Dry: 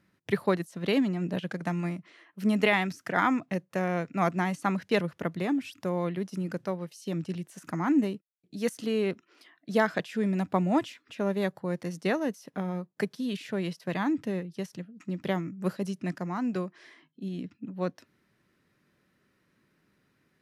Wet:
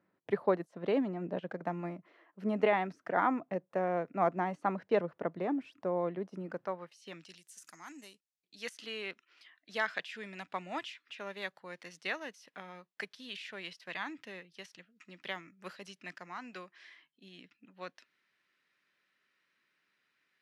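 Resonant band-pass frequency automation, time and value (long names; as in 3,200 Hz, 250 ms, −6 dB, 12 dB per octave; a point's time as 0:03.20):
resonant band-pass, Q 0.97
0:06.36 630 Hz
0:07.10 1,900 Hz
0:07.42 7,400 Hz
0:08.10 7,400 Hz
0:08.69 2,700 Hz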